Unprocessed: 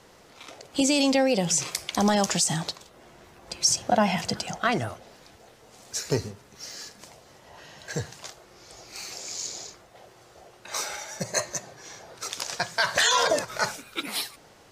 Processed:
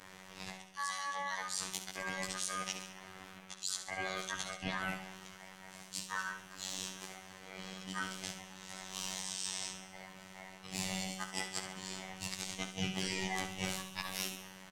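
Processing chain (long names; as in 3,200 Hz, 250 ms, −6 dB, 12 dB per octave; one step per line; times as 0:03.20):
every overlapping window played backwards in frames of 37 ms
reversed playback
downward compressor 8 to 1, threshold −39 dBFS, peak gain reduction 20 dB
reversed playback
ring modulation 1,400 Hz
phases set to zero 94.5 Hz
parametric band 160 Hz +14.5 dB 0.7 octaves
on a send: repeating echo 69 ms, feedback 58%, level −10 dB
on the sum: level +7 dB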